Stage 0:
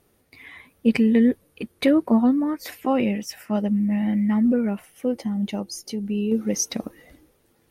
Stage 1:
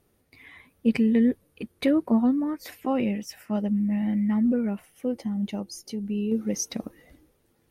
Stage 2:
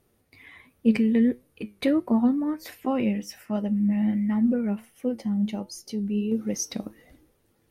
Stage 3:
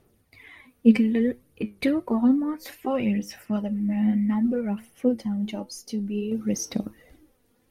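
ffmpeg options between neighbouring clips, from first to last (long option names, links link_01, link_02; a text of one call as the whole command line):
ffmpeg -i in.wav -af "lowshelf=frequency=270:gain=4,volume=-5.5dB" out.wav
ffmpeg -i in.wav -af "flanger=delay=7.7:depth=2.5:regen=78:speed=1.4:shape=triangular,volume=4.5dB" out.wav
ffmpeg -i in.wav -af "aphaser=in_gain=1:out_gain=1:delay=4.2:decay=0.48:speed=0.6:type=sinusoidal" out.wav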